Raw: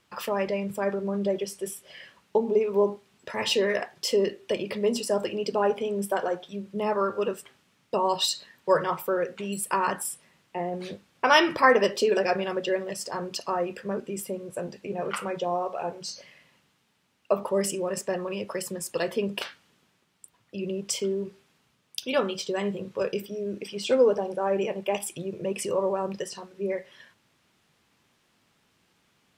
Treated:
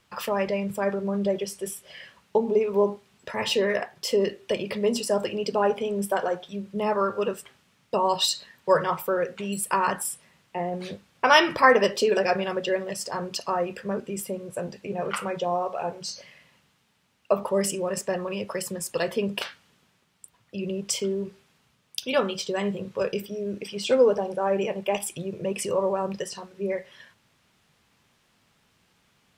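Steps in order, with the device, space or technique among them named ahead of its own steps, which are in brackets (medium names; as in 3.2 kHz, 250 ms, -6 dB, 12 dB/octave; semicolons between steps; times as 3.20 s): 3.30–4.21 s: peaking EQ 5.6 kHz -3.5 dB 2.4 oct; low shelf boost with a cut just above (bass shelf 86 Hz +5.5 dB; peaking EQ 320 Hz -4 dB 0.61 oct); trim +2 dB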